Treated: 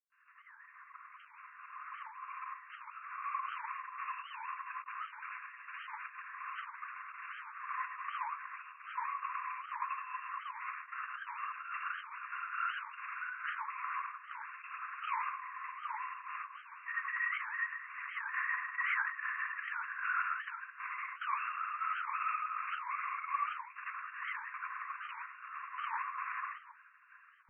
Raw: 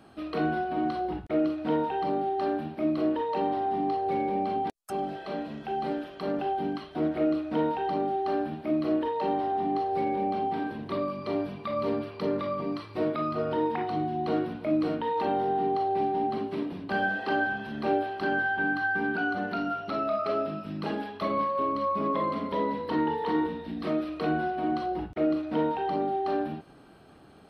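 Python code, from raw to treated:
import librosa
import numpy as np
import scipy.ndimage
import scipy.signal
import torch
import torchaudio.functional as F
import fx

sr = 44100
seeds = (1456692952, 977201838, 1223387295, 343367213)

p1 = fx.fade_in_head(x, sr, length_s=4.7)
p2 = fx.over_compress(p1, sr, threshold_db=-30.0, ratio=-0.5)
p3 = p1 + (p2 * 10.0 ** (-1.0 / 20.0))
p4 = fx.granulator(p3, sr, seeds[0], grain_ms=100.0, per_s=20.0, spray_ms=100.0, spread_st=0)
p5 = fx.volume_shaper(p4, sr, bpm=145, per_beat=1, depth_db=-12, release_ms=110.0, shape='slow start')
p6 = fx.formant_shift(p5, sr, semitones=3)
p7 = np.clip(p6, -10.0 ** (-22.0 / 20.0), 10.0 ** (-22.0 / 20.0))
p8 = fx.rev_gated(p7, sr, seeds[1], gate_ms=120, shape='rising', drr_db=-0.5)
p9 = fx.lpc_vocoder(p8, sr, seeds[2], excitation='whisper', order=10)
p10 = fx.brickwall_bandpass(p9, sr, low_hz=1000.0, high_hz=2800.0)
p11 = fx.record_warp(p10, sr, rpm=78.0, depth_cents=250.0)
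y = p11 * 10.0 ** (-5.0 / 20.0)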